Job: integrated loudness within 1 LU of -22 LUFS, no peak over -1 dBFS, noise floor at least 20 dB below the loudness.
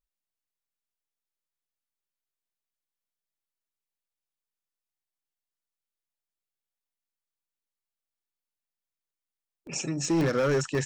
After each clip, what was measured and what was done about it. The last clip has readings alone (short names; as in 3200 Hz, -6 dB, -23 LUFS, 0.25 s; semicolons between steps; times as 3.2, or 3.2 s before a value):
clipped 0.6%; flat tops at -20.5 dBFS; dropouts 3; longest dropout 1.2 ms; loudness -27.5 LUFS; peak -20.5 dBFS; loudness target -22.0 LUFS
-> clip repair -20.5 dBFS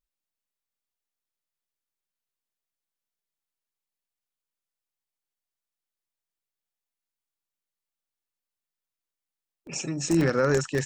clipped 0.0%; dropouts 3; longest dropout 1.2 ms
-> interpolate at 9.67/10.21/10.75, 1.2 ms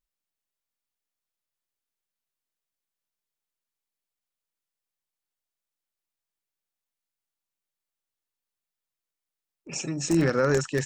dropouts 0; loudness -25.0 LUFS; peak -11.5 dBFS; loudness target -22.0 LUFS
-> gain +3 dB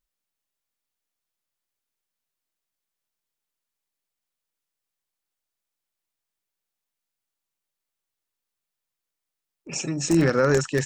loudness -22.0 LUFS; peak -8.5 dBFS; noise floor -86 dBFS